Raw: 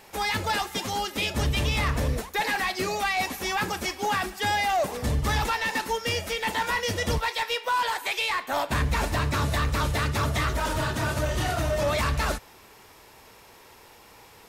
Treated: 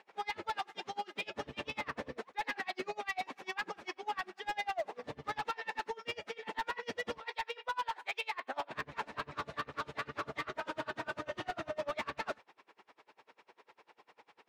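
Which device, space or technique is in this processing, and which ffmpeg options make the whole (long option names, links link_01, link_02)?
helicopter radio: -af "highpass=310,lowpass=3000,aeval=exprs='val(0)*pow(10,-30*(0.5-0.5*cos(2*PI*10*n/s))/20)':channel_layout=same,asoftclip=type=hard:threshold=-26.5dB,volume=-3.5dB"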